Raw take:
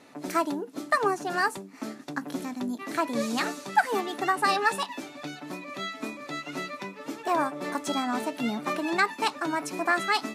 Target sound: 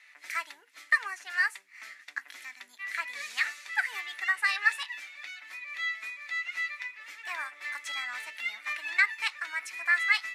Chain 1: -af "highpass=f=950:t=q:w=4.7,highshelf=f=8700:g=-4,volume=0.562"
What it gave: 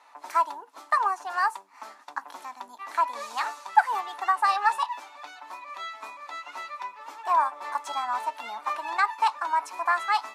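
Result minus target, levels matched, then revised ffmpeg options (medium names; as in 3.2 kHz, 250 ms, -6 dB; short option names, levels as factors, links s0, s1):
1 kHz band +13.5 dB
-af "highpass=f=2000:t=q:w=4.7,highshelf=f=8700:g=-4,volume=0.562"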